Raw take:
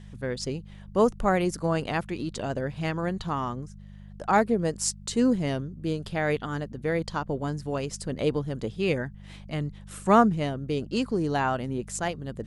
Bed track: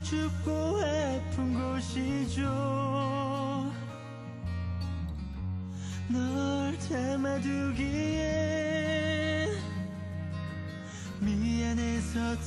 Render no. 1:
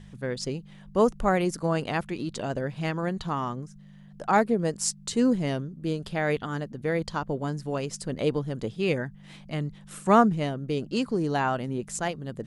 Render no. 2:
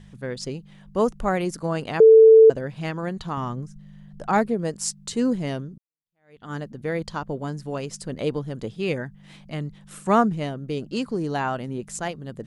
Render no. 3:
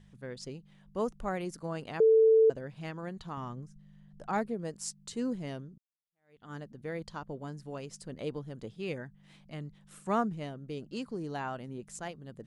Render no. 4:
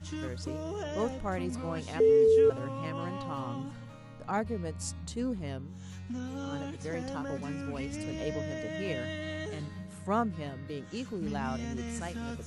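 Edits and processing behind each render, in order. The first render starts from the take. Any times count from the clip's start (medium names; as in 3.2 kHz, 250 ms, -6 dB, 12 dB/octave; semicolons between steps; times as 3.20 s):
de-hum 50 Hz, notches 2
2.00–2.50 s: bleep 444 Hz -7 dBFS; 3.37–4.49 s: bass shelf 140 Hz +10 dB; 5.78–6.51 s: fade in exponential
trim -11 dB
add bed track -7.5 dB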